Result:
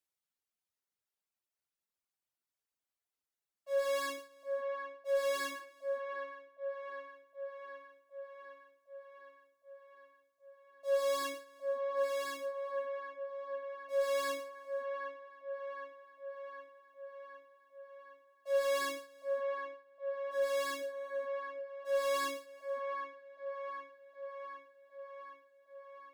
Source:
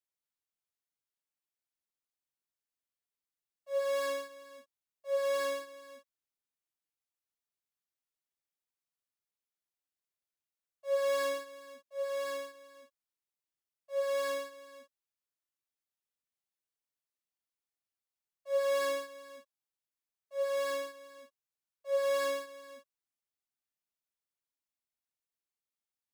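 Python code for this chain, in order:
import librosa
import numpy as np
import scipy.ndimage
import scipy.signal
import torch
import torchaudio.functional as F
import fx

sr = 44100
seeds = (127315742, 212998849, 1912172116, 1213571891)

p1 = fx.dereverb_blind(x, sr, rt60_s=2.0)
p2 = fx.spec_box(p1, sr, start_s=8.95, length_s=2.29, low_hz=1300.0, high_hz=3200.0, gain_db=-7)
p3 = fx.cheby_harmonics(p2, sr, harmonics=(5,), levels_db=(-23,), full_scale_db=-22.5)
y = p3 + fx.echo_wet_bandpass(p3, sr, ms=763, feedback_pct=66, hz=900.0, wet_db=-3.5, dry=0)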